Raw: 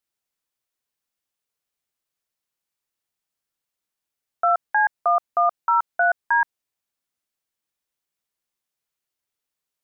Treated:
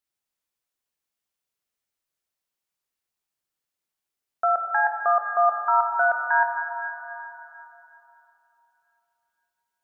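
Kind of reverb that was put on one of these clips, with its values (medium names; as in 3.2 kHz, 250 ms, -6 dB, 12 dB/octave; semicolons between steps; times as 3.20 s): plate-style reverb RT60 3.4 s, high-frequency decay 0.8×, DRR 2.5 dB; trim -3 dB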